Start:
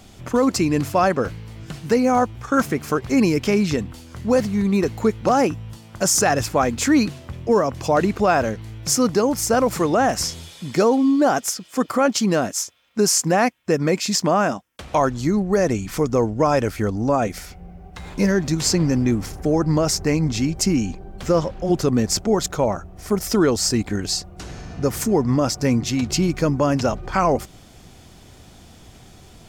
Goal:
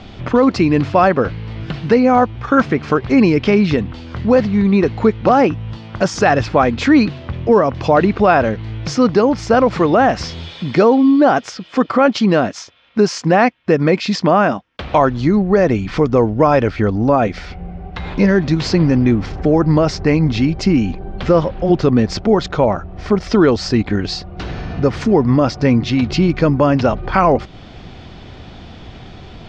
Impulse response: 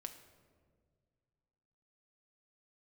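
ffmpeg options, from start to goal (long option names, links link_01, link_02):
-filter_complex "[0:a]asplit=2[link_01][link_02];[link_02]acompressor=threshold=-32dB:ratio=6,volume=0dB[link_03];[link_01][link_03]amix=inputs=2:normalize=0,lowpass=frequency=4100:width=0.5412,lowpass=frequency=4100:width=1.3066,volume=4.5dB"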